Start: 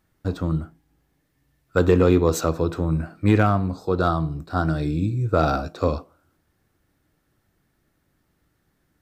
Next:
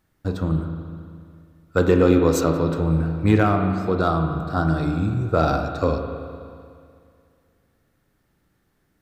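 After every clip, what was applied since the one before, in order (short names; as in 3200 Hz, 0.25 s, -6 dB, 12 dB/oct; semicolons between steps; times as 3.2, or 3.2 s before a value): spring tank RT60 2.3 s, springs 37/42 ms, chirp 20 ms, DRR 5 dB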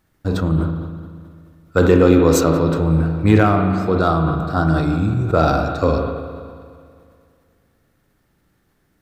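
sustainer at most 41 dB/s; gain +3.5 dB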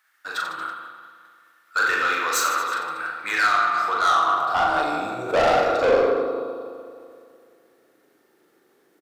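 high-pass sweep 1500 Hz -> 380 Hz, 3.45–6.23; soft clip -16.5 dBFS, distortion -7 dB; reverse bouncing-ball echo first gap 40 ms, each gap 1.25×, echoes 5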